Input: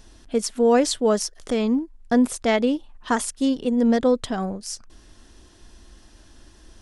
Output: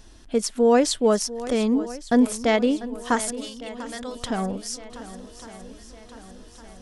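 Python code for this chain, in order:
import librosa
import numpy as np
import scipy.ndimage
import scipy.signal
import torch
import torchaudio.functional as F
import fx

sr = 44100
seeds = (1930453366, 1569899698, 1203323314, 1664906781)

p1 = fx.tone_stack(x, sr, knobs='10-0-10', at=(3.33, 4.15), fade=0.02)
y = p1 + fx.echo_swing(p1, sr, ms=1158, ratio=1.5, feedback_pct=51, wet_db=-15.5, dry=0)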